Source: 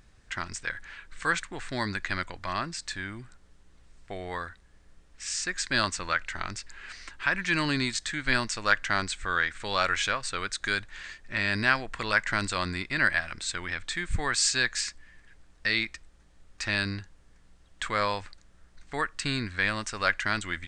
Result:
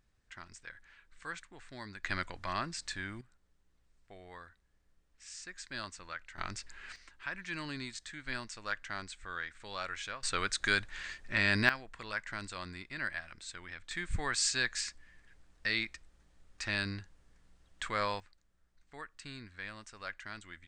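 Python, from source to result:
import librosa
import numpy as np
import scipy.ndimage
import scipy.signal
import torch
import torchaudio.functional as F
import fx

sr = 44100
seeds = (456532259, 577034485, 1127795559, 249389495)

y = fx.gain(x, sr, db=fx.steps((0.0, -15.5), (2.04, -4.5), (3.21, -15.5), (6.38, -5.0), (6.96, -13.5), (10.23, -1.0), (11.69, -13.0), (13.91, -6.0), (18.2, -17.0)))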